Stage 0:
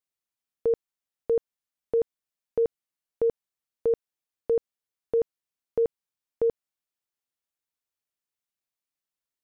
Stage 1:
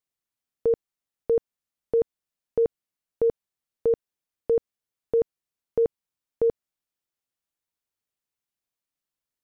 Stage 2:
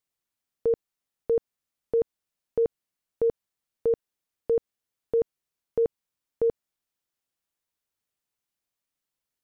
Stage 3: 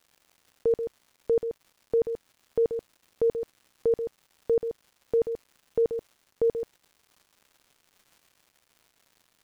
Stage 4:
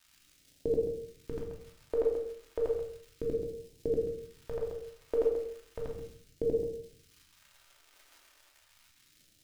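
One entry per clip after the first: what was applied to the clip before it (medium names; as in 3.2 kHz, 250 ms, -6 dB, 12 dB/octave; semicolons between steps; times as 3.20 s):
bass shelf 400 Hz +4.5 dB
peak limiter -20 dBFS, peak gain reduction 4.5 dB; trim +2 dB
crackle 270 per s -48 dBFS; on a send: delay 133 ms -8.5 dB
phase shifter stages 2, 0.34 Hz, lowest notch 140–1200 Hz; simulated room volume 750 m³, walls furnished, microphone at 2.7 m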